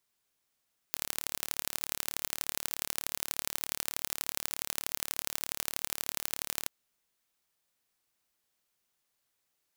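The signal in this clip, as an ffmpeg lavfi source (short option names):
-f lavfi -i "aevalsrc='0.668*eq(mod(n,1202),0)*(0.5+0.5*eq(mod(n,3606),0))':d=5.73:s=44100"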